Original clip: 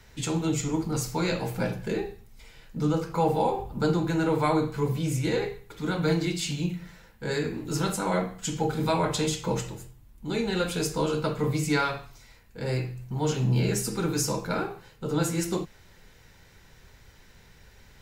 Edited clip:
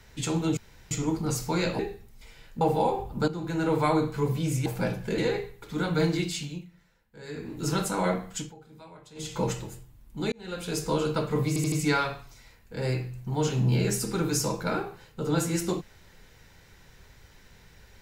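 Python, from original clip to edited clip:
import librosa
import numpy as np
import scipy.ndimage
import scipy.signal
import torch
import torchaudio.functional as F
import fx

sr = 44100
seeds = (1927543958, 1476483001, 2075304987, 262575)

y = fx.edit(x, sr, fx.insert_room_tone(at_s=0.57, length_s=0.34),
    fx.move(start_s=1.45, length_s=0.52, to_s=5.26),
    fx.cut(start_s=2.79, length_s=0.42),
    fx.fade_in_from(start_s=3.88, length_s=0.45, floor_db=-14.0),
    fx.fade_down_up(start_s=6.3, length_s=1.46, db=-15.5, fade_s=0.44),
    fx.fade_down_up(start_s=8.4, length_s=1.05, db=-23.5, fade_s=0.22),
    fx.fade_in_span(start_s=10.4, length_s=0.57),
    fx.stutter(start_s=11.56, slice_s=0.08, count=4), tone=tone)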